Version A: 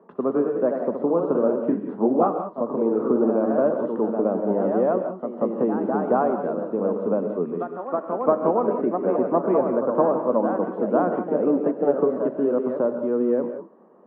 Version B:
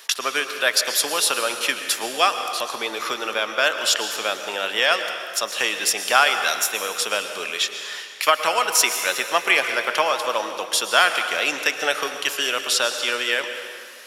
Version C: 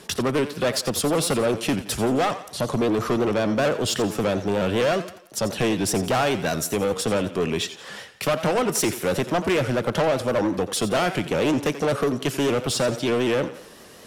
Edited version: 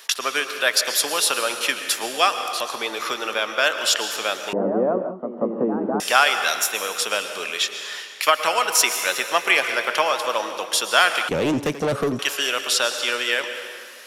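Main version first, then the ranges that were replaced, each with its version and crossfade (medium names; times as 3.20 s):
B
4.53–6.00 s: from A
11.29–12.19 s: from C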